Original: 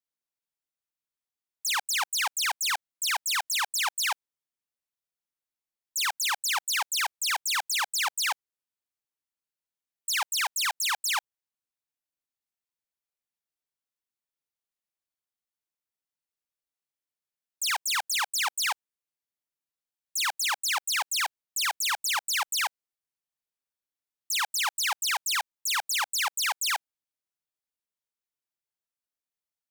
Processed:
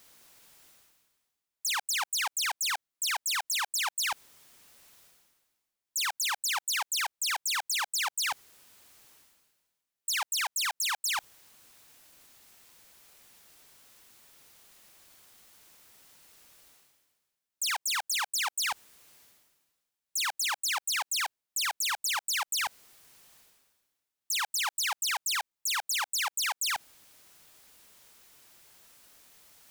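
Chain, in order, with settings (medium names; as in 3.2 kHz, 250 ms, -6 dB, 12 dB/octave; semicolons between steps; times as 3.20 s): reverse; upward compressor, threshold -37 dBFS; reverse; peak limiter -28.5 dBFS, peak gain reduction 7 dB; trim +3.5 dB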